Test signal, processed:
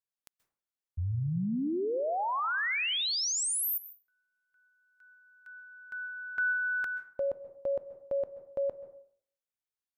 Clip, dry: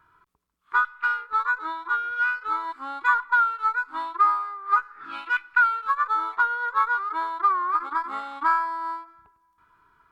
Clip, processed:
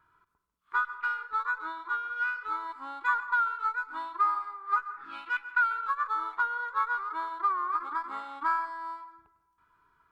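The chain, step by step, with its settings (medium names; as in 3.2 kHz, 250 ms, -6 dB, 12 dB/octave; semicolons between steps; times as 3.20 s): plate-style reverb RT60 0.59 s, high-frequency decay 0.45×, pre-delay 120 ms, DRR 13 dB; trim -6.5 dB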